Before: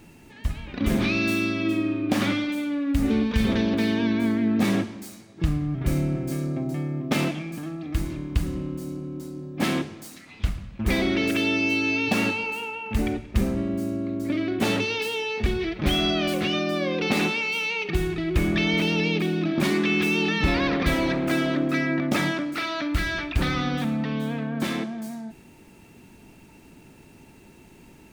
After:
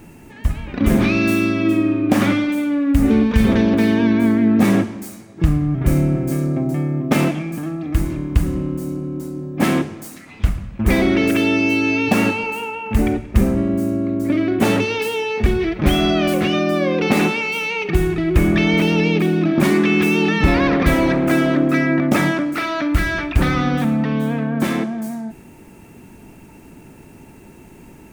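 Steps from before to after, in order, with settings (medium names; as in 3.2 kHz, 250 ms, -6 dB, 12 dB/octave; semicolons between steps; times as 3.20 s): peaking EQ 4 kHz -8 dB 1.3 oct; trim +8 dB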